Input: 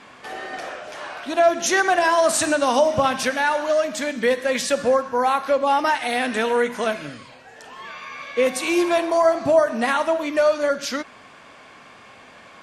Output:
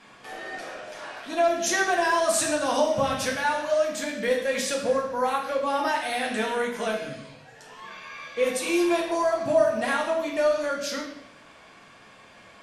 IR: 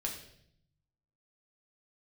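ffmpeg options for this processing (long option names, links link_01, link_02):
-filter_complex "[0:a]highshelf=frequency=6600:gain=5[link_01];[1:a]atrim=start_sample=2205[link_02];[link_01][link_02]afir=irnorm=-1:irlink=0,volume=-6.5dB"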